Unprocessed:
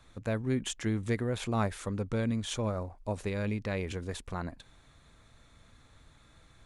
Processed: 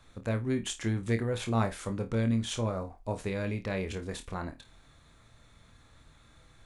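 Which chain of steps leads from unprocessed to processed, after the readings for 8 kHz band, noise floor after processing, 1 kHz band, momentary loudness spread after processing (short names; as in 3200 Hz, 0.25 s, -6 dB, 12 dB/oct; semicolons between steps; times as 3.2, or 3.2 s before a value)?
+1.0 dB, -60 dBFS, +1.0 dB, 9 LU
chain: flutter echo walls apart 4.5 m, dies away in 0.2 s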